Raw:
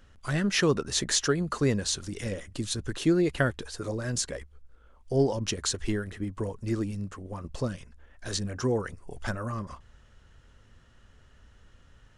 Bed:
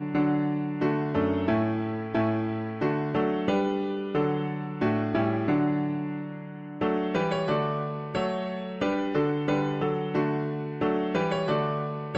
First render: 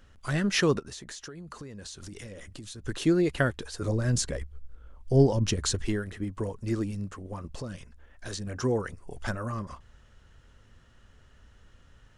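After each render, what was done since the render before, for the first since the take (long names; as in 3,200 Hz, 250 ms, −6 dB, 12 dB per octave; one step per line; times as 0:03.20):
0:00.79–0:02.85: downward compressor 20 to 1, threshold −38 dBFS
0:03.81–0:05.82: low-shelf EQ 210 Hz +10 dB
0:07.35–0:08.47: downward compressor, threshold −32 dBFS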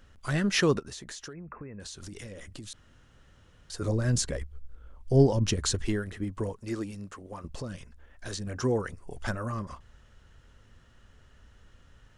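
0:01.33–0:01.80: linear-phase brick-wall low-pass 2,700 Hz
0:02.73–0:03.70: fill with room tone
0:06.54–0:07.44: low-shelf EQ 210 Hz −10.5 dB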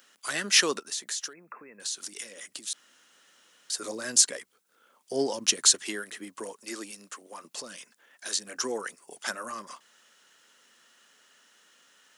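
high-pass filter 210 Hz 24 dB per octave
spectral tilt +4 dB per octave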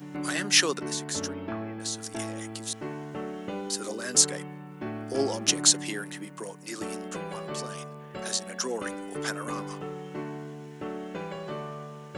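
mix in bed −10 dB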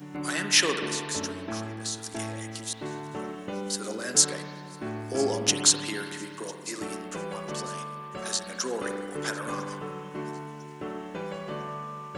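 delay with a high-pass on its return 1,001 ms, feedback 43%, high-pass 4,300 Hz, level −19.5 dB
spring reverb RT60 2 s, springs 46 ms, chirp 50 ms, DRR 5.5 dB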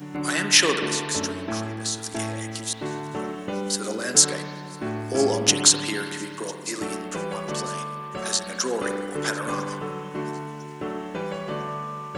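level +5 dB
brickwall limiter −2 dBFS, peak gain reduction 2.5 dB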